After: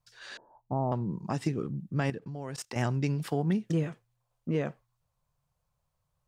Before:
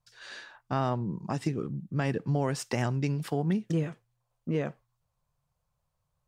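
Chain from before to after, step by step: 0.37–0.92 Chebyshev low-pass 950 Hz, order 5; 2.1–2.76 level quantiser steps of 19 dB

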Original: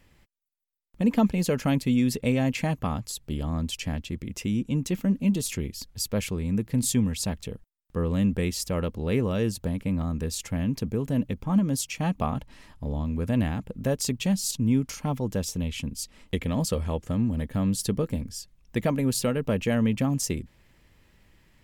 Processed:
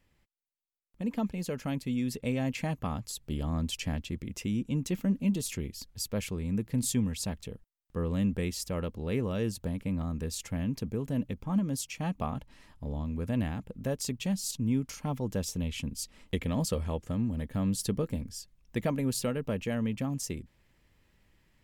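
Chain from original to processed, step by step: vocal rider 2 s; gain -6 dB

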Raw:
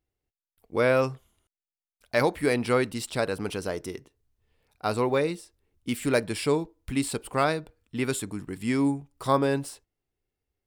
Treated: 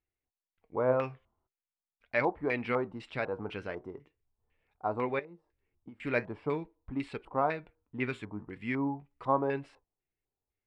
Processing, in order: 5.19–6 compressor 12:1, threshold -38 dBFS, peak gain reduction 16 dB; flange 0.42 Hz, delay 2.2 ms, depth 7.5 ms, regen +74%; LFO low-pass square 2 Hz 940–2300 Hz; gain -4 dB

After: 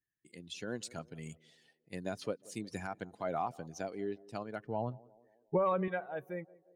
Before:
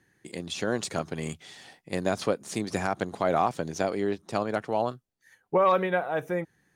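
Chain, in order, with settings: per-bin expansion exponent 1.5; 4.64–5.88 RIAA curve playback; narrowing echo 0.179 s, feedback 58%, band-pass 440 Hz, level -21 dB; gain -8.5 dB

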